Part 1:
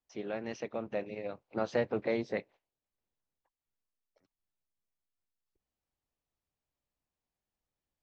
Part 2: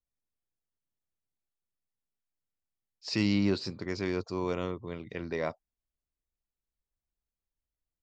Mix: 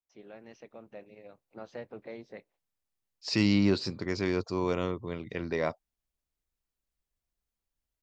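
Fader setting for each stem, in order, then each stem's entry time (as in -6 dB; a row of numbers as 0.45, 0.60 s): -11.5, +2.5 dB; 0.00, 0.20 s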